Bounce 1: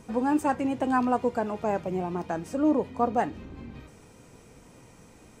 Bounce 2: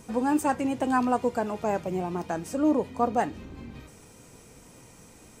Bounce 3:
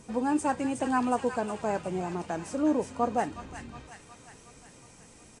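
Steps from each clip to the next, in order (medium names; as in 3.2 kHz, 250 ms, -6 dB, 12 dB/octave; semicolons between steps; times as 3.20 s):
treble shelf 5.1 kHz +9 dB
feedback echo behind a high-pass 364 ms, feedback 58%, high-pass 1.7 kHz, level -4 dB; resampled via 22.05 kHz; trim -2.5 dB; Vorbis 64 kbps 32 kHz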